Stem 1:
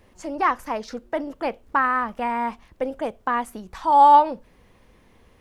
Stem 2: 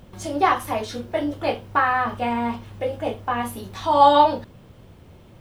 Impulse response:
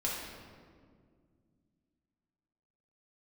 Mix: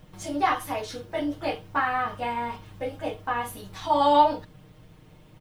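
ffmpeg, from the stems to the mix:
-filter_complex "[0:a]volume=-9.5dB[a];[1:a]adelay=1.2,volume=-4.5dB[b];[a][b]amix=inputs=2:normalize=0,equalizer=f=530:w=0.5:g=-3,aecho=1:1:6.5:0.69"

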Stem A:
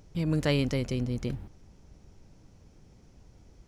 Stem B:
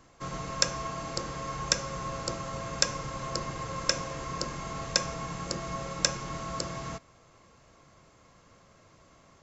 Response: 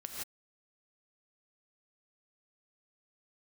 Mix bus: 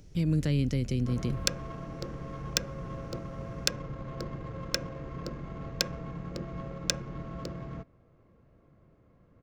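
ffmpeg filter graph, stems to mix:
-filter_complex "[0:a]acrossover=split=270[a][b];[b]acompressor=threshold=-37dB:ratio=4[c];[a][c]amix=inputs=2:normalize=0,volume=2.5dB[d];[1:a]adynamicsmooth=sensitivity=1:basefreq=1.1k,adelay=850,volume=1dB[e];[d][e]amix=inputs=2:normalize=0,equalizer=f=920:w=1.2:g=-9"

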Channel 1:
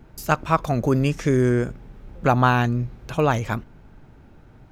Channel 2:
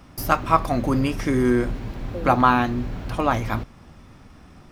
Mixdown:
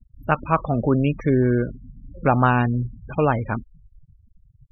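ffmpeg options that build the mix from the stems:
-filter_complex "[0:a]highshelf=f=4.3k:g=-10.5,acrusher=bits=8:mode=log:mix=0:aa=0.000001,volume=0.5dB[a];[1:a]highpass=f=85:w=0.5412,highpass=f=85:w=1.3066,asoftclip=type=tanh:threshold=-15.5dB,flanger=delay=18:depth=4.5:speed=0.66,volume=-8.5dB[b];[a][b]amix=inputs=2:normalize=0,afftfilt=real='re*gte(hypot(re,im),0.0398)':imag='im*gte(hypot(re,im),0.0398)':win_size=1024:overlap=0.75"

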